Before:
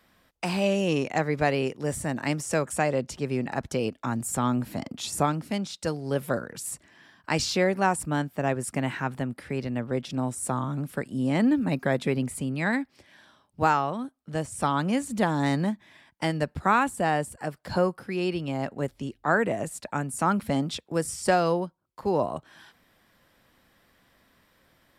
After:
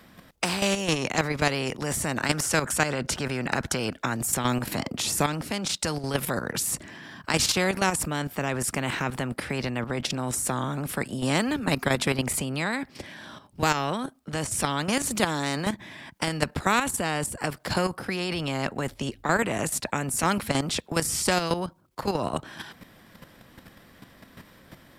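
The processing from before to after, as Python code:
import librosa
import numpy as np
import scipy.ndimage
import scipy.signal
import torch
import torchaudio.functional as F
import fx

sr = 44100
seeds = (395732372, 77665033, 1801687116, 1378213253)

y = fx.peak_eq(x, sr, hz=1500.0, db=10.5, octaves=0.29, at=(2.15, 4.16))
y = fx.highpass(y, sr, hz=170.0, slope=12, at=(15.15, 15.65), fade=0.02)
y = fx.peak_eq(y, sr, hz=170.0, db=6.5, octaves=2.2)
y = fx.level_steps(y, sr, step_db=10)
y = fx.spectral_comp(y, sr, ratio=2.0)
y = F.gain(torch.from_numpy(y), 4.5).numpy()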